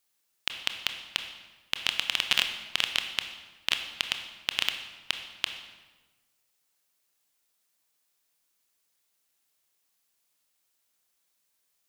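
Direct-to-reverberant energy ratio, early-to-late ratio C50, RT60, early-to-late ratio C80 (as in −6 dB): 6.0 dB, 8.0 dB, 1.3 s, 9.5 dB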